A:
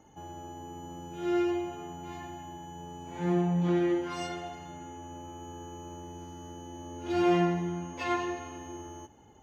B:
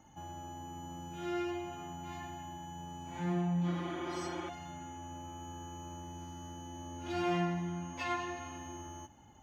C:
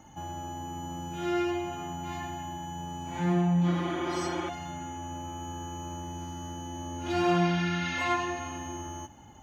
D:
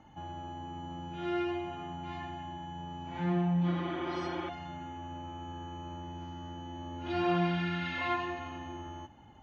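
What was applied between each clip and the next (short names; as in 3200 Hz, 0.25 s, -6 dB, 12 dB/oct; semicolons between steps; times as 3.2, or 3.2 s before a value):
spectral repair 3.72–4.46, 290–3800 Hz before; bell 430 Hz -13 dB 0.55 oct; in parallel at -1.5 dB: compressor, threshold -39 dBFS, peak gain reduction 14.5 dB; on the sum: gain -5.5 dB
spectral repair 7.26–8.03, 1300–6500 Hz both; gain +7.5 dB
LPF 4300 Hz 24 dB/oct; gain -4 dB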